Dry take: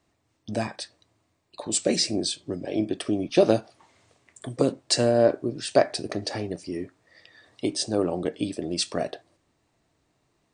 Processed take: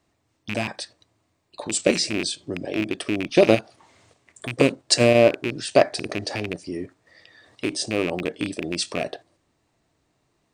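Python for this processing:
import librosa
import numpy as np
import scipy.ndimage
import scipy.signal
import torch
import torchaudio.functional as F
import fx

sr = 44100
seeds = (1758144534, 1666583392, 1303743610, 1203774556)

p1 = fx.rattle_buzz(x, sr, strikes_db=-32.0, level_db=-17.0)
p2 = fx.level_steps(p1, sr, step_db=21)
p3 = p1 + (p2 * 10.0 ** (1.0 / 20.0))
y = p3 * 10.0 ** (-1.0 / 20.0)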